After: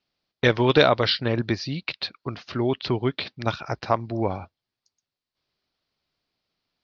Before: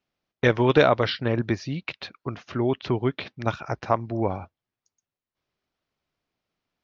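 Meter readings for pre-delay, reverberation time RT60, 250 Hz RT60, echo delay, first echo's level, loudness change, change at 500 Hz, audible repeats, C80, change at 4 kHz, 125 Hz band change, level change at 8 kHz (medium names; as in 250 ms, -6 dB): no reverb, no reverb, no reverb, no echo, no echo, +0.5 dB, 0.0 dB, no echo, no reverb, +6.5 dB, 0.0 dB, no reading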